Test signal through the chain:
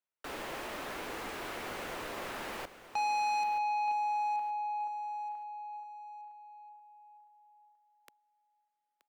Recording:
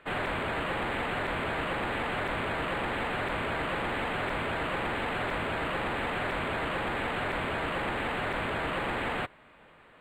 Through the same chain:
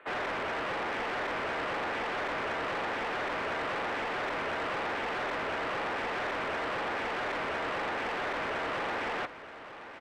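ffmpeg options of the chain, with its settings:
ffmpeg -i in.wav -filter_complex "[0:a]acrossover=split=280 2900:gain=0.126 1 0.224[link_01][link_02][link_03];[link_01][link_02][link_03]amix=inputs=3:normalize=0,acrossover=split=220|4100[link_04][link_05][link_06];[link_05]asoftclip=type=tanh:threshold=-33dB[link_07];[link_04][link_07][link_06]amix=inputs=3:normalize=0,aecho=1:1:926|1852|2778:0.211|0.0634|0.019,volume=3dB" out.wav

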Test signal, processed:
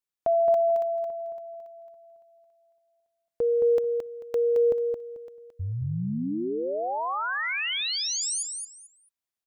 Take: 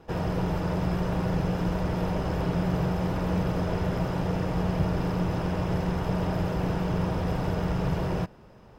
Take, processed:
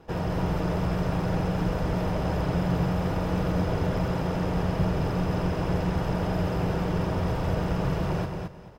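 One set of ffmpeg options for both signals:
ffmpeg -i in.wav -af "aecho=1:1:220|440|660:0.562|0.118|0.0248" out.wav

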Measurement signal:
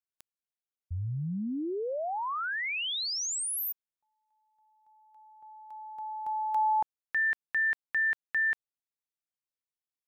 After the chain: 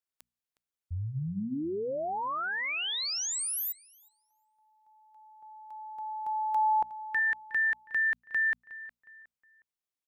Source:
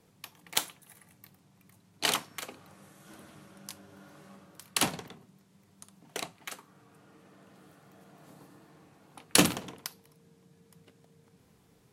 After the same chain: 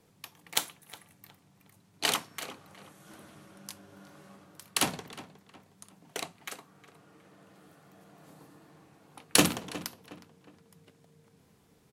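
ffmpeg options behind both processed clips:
ffmpeg -i in.wav -filter_complex "[0:a]bandreject=frequency=60:width_type=h:width=6,bandreject=frequency=120:width_type=h:width=6,bandreject=frequency=180:width_type=h:width=6,bandreject=frequency=240:width_type=h:width=6,asplit=2[link_01][link_02];[link_02]adelay=363,lowpass=frequency=2900:poles=1,volume=-15.5dB,asplit=2[link_03][link_04];[link_04]adelay=363,lowpass=frequency=2900:poles=1,volume=0.38,asplit=2[link_05][link_06];[link_06]adelay=363,lowpass=frequency=2900:poles=1,volume=0.38[link_07];[link_01][link_03][link_05][link_07]amix=inputs=4:normalize=0" out.wav

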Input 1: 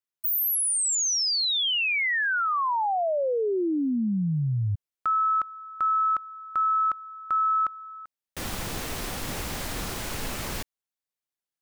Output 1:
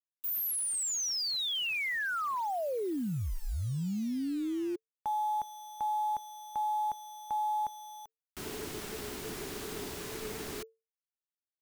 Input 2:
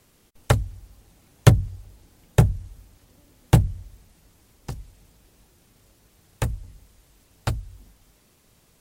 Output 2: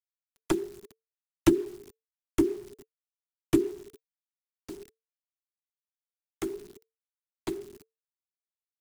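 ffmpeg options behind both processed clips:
ffmpeg -i in.wav -af "acrusher=bits=6:mix=0:aa=0.000001,afreqshift=-450,volume=-8dB" out.wav

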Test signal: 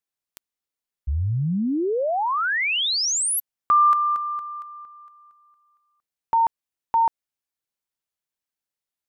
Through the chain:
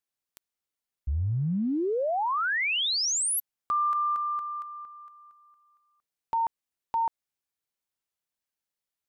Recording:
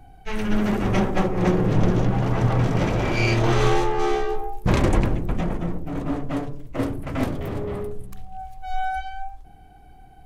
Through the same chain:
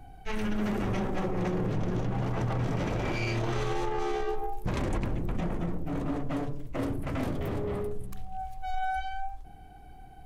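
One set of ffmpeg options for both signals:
ffmpeg -i in.wav -af "acompressor=threshold=-23dB:ratio=6:attack=0.12:release=60:knee=6:detection=rms,volume=-1dB" out.wav

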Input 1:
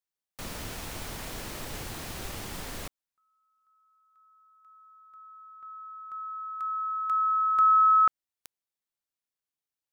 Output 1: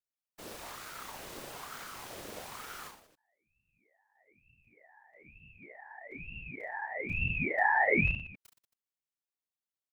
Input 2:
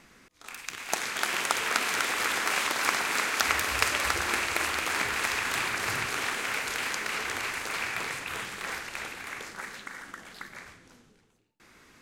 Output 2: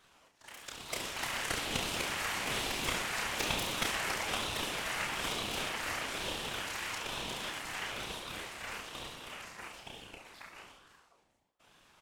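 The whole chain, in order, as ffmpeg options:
ffmpeg -i in.wav -af "afftfilt=real='hypot(re,im)*cos(2*PI*random(0))':imag='hypot(re,im)*sin(2*PI*random(1))':win_size=512:overlap=0.75,aecho=1:1:30|69|119.7|185.6|271.3:0.631|0.398|0.251|0.158|0.1,aeval=exprs='val(0)*sin(2*PI*900*n/s+900*0.55/1.1*sin(2*PI*1.1*n/s))':channel_layout=same" out.wav

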